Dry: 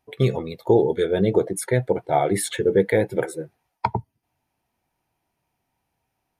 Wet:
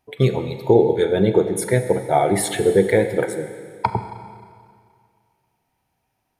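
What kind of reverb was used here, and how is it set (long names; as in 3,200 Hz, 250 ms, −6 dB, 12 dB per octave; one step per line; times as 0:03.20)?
four-comb reverb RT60 2.1 s, combs from 30 ms, DRR 8.5 dB
level +2.5 dB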